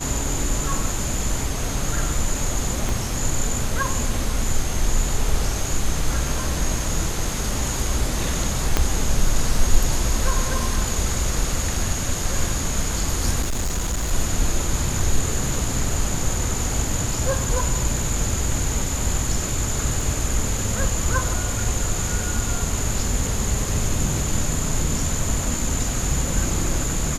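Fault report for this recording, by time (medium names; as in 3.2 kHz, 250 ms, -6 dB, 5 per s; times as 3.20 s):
2.89 s: pop
8.77 s: pop -3 dBFS
13.41–14.13 s: clipped -19.5 dBFS
20.01 s: dropout 2.4 ms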